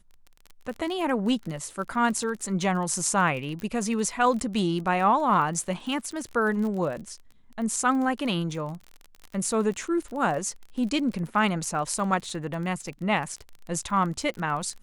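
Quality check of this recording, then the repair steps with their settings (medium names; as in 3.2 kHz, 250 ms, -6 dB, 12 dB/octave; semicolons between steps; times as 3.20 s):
crackle 29 per s -33 dBFS
3.60 s: pop -22 dBFS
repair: de-click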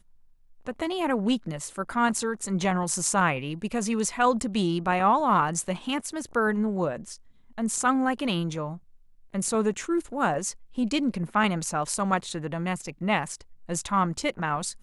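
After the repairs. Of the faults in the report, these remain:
3.60 s: pop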